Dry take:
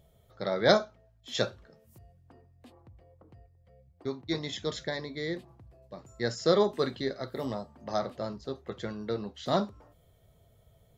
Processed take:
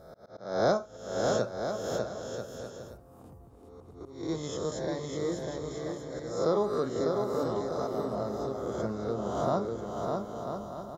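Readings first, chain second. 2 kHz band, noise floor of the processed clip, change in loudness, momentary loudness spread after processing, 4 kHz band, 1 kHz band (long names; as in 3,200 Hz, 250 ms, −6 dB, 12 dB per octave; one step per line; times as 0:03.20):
−5.5 dB, −53 dBFS, −1.0 dB, 14 LU, −8.0 dB, +1.5 dB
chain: peak hold with a rise ahead of every peak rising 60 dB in 1.02 s
flat-topped bell 2,800 Hz −13 dB
downward compressor 1.5 to 1, threshold −31 dBFS, peak gain reduction 6 dB
volume swells 269 ms
bouncing-ball delay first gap 600 ms, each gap 0.65×, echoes 5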